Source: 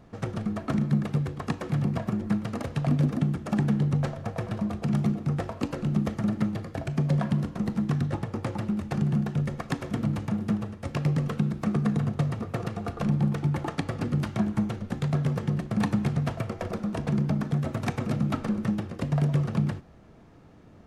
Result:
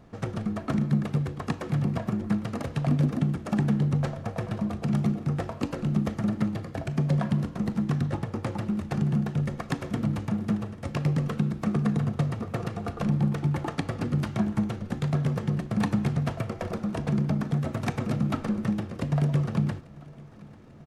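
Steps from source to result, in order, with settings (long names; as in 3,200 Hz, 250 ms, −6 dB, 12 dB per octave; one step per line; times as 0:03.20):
repeating echo 843 ms, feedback 59%, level −23 dB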